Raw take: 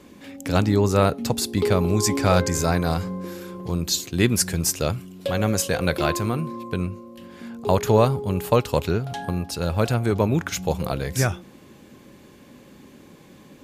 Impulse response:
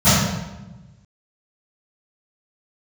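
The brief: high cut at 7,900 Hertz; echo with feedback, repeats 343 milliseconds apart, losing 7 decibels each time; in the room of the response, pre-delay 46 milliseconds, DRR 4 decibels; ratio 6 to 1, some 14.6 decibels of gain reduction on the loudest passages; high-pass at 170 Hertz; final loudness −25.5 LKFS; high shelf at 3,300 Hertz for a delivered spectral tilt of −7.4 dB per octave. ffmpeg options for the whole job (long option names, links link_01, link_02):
-filter_complex "[0:a]highpass=170,lowpass=7900,highshelf=frequency=3300:gain=-5.5,acompressor=threshold=-30dB:ratio=6,aecho=1:1:343|686|1029|1372|1715:0.447|0.201|0.0905|0.0407|0.0183,asplit=2[link_01][link_02];[1:a]atrim=start_sample=2205,adelay=46[link_03];[link_02][link_03]afir=irnorm=-1:irlink=0,volume=-29dB[link_04];[link_01][link_04]amix=inputs=2:normalize=0,volume=2.5dB"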